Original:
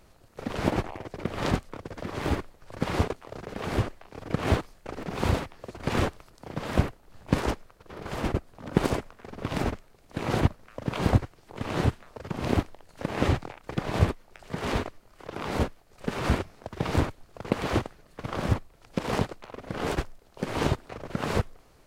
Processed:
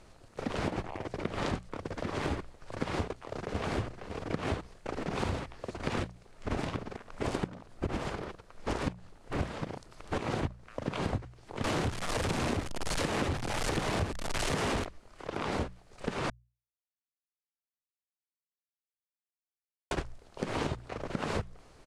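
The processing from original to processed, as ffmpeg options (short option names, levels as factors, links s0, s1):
-filter_complex "[0:a]asplit=2[s0][s1];[s1]afade=t=in:st=2.99:d=0.01,afade=t=out:st=3.63:d=0.01,aecho=0:1:550|1100|1650:0.354813|0.0887033|0.0221758[s2];[s0][s2]amix=inputs=2:normalize=0,asettb=1/sr,asplit=3[s3][s4][s5];[s3]atrim=end=11.644[s6];[s4]atrim=start=11.64:end=14.85,asetpts=PTS-STARTPTS,afade=t=in:d=0.004:c=qsin,afade=t=out:st=3.206:d=0.004:c=qsin,aeval=exprs='val(0)+0.5*0.0631*sgn(val(0))':c=same[s7];[s5]atrim=start=14.846[s8];[s6][s7]acrossfade=d=0.004:c1=hsin:c2=qsin[s9];[s9][s8]acrossfade=d=0.004:c1=qsin:c2=hsin,asplit=5[s10][s11][s12][s13][s14];[s10]atrim=end=6.032[s15];[s11]atrim=start=6.028:end=10.182,asetpts=PTS-STARTPTS,areverse[s16];[s12]atrim=start=10.178:end=16.3,asetpts=PTS-STARTPTS,afade=t=out:st=6.118:d=0.004:c=hsin[s17];[s13]atrim=start=16.3:end=19.91,asetpts=PTS-STARTPTS,volume=0[s18];[s14]atrim=start=19.91,asetpts=PTS-STARTPTS,afade=t=in:d=0.004:c=hsin[s19];[s15][s16]acrossfade=d=0.004:c1=hsin:c2=hsin[s20];[s17][s18][s19]concat=n=3:v=0:a=1[s21];[s20][s21]acrossfade=d=0.004:c1=hsin:c2=hsin,lowpass=f=10000:w=0.5412,lowpass=f=10000:w=1.3066,bandreject=f=60:t=h:w=6,bandreject=f=120:t=h:w=6,bandreject=f=180:t=h:w=6,acompressor=threshold=0.0282:ratio=6,volume=1.19"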